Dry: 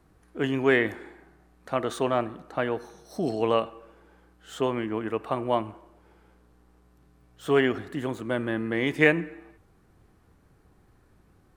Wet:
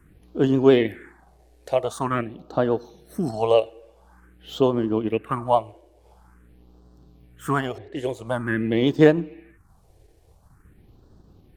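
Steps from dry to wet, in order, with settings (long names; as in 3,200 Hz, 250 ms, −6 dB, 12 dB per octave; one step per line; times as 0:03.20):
pitch vibrato 13 Hz 36 cents
transient designer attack +1 dB, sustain −5 dB
all-pass phaser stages 4, 0.47 Hz, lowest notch 200–2,200 Hz
0:07.78–0:08.27: low-pass that shuts in the quiet parts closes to 1,500 Hz, open at −32 dBFS
level +7 dB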